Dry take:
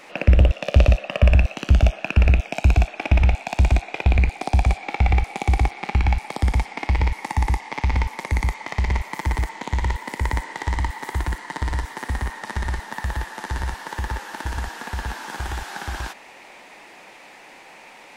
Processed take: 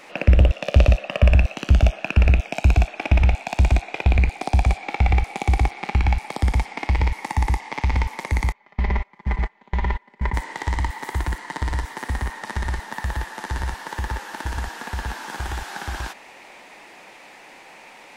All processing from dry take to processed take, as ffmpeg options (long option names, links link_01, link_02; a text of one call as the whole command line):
ffmpeg -i in.wav -filter_complex "[0:a]asettb=1/sr,asplit=3[link_01][link_02][link_03];[link_01]atrim=end=8.524[link_04];[link_02]atrim=start=8.52:end=10.34,asetpts=PTS-STARTPTS,afade=type=in:duration=0.004:curve=qsin,afade=type=out:start_time=1.816:duration=0.004:curve=qsin,agate=range=-22dB:threshold=-26dB:ratio=16:release=100:detection=peak,lowpass=2800,aecho=1:1:5:0.65,atrim=end_sample=80262[link_05];[link_03]atrim=start=10.336[link_06];[link_04][link_05]acrossfade=duration=0.004:curve1=hsin:curve2=qsin[link_07];[link_07][link_06]acrossfade=duration=0.004:curve1=qsin:curve2=hsin" out.wav